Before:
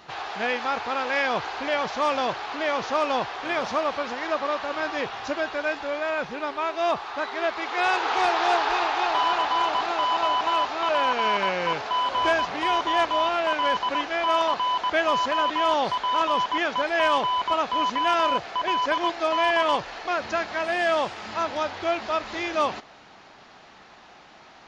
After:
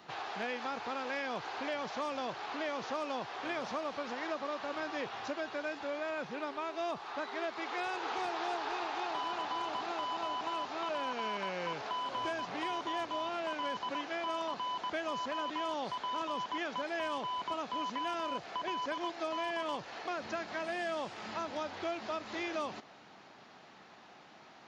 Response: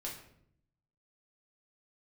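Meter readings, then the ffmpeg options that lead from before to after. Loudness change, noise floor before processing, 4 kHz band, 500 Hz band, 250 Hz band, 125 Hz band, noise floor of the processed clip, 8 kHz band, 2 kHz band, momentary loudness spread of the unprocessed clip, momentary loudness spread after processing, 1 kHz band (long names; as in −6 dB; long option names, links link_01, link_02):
−12.5 dB, −50 dBFS, −12.5 dB, −12.0 dB, −8.5 dB, −9.0 dB, −56 dBFS, can't be measured, −13.0 dB, 6 LU, 4 LU, −13.5 dB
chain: -filter_complex "[0:a]highpass=140,lowshelf=frequency=310:gain=6.5,acrossover=split=330|4500[link_01][link_02][link_03];[link_01]acompressor=threshold=-39dB:ratio=4[link_04];[link_02]acompressor=threshold=-28dB:ratio=4[link_05];[link_03]acompressor=threshold=-46dB:ratio=4[link_06];[link_04][link_05][link_06]amix=inputs=3:normalize=0,asoftclip=type=hard:threshold=-18.5dB,volume=-7.5dB"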